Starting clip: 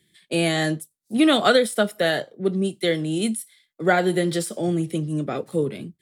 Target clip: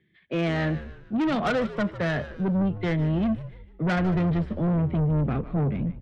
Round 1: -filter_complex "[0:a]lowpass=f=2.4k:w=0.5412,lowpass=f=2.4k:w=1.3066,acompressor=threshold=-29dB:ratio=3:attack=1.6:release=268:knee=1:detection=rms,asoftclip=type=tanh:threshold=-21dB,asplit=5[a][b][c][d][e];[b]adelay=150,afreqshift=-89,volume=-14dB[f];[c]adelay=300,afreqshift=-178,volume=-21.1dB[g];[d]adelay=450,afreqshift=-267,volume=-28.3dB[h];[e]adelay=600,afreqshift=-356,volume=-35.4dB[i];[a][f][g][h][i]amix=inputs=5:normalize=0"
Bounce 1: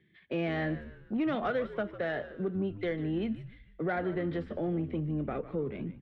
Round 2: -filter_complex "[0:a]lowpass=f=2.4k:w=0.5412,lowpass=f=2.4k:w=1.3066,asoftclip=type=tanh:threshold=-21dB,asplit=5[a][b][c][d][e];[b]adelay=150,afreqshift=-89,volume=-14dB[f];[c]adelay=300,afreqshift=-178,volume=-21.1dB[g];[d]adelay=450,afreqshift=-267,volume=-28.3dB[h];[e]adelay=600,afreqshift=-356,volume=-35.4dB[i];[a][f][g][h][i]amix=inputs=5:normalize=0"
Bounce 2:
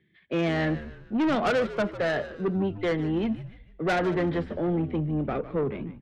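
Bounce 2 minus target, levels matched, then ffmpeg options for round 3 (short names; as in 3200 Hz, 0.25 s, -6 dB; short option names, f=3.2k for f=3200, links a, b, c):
125 Hz band -5.5 dB
-filter_complex "[0:a]lowpass=f=2.4k:w=0.5412,lowpass=f=2.4k:w=1.3066,asubboost=boost=9:cutoff=170,asoftclip=type=tanh:threshold=-21dB,asplit=5[a][b][c][d][e];[b]adelay=150,afreqshift=-89,volume=-14dB[f];[c]adelay=300,afreqshift=-178,volume=-21.1dB[g];[d]adelay=450,afreqshift=-267,volume=-28.3dB[h];[e]adelay=600,afreqshift=-356,volume=-35.4dB[i];[a][f][g][h][i]amix=inputs=5:normalize=0"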